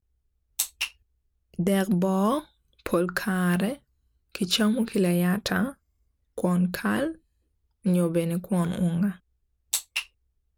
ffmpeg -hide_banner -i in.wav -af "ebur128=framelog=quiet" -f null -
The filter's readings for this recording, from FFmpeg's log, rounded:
Integrated loudness:
  I:         -26.3 LUFS
  Threshold: -36.9 LUFS
Loudness range:
  LRA:         1.9 LU
  Threshold: -47.1 LUFS
  LRA low:   -28.1 LUFS
  LRA high:  -26.2 LUFS